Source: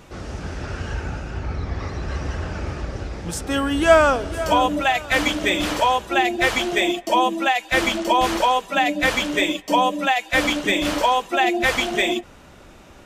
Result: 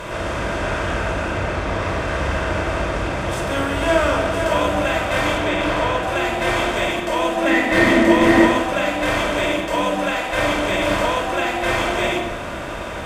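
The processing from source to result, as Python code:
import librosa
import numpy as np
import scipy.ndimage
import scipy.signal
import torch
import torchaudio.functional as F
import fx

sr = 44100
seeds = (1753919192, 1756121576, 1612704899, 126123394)

y = fx.bin_compress(x, sr, power=0.4)
y = fx.high_shelf(y, sr, hz=6600.0, db=-10.5, at=(5.38, 6.03))
y = fx.small_body(y, sr, hz=(260.0, 1900.0), ring_ms=25, db=16, at=(7.45, 8.47))
y = fx.quant_float(y, sr, bits=8)
y = fx.room_shoebox(y, sr, seeds[0], volume_m3=2700.0, walls='furnished', distance_m=5.2)
y = y * 10.0 ** (-11.5 / 20.0)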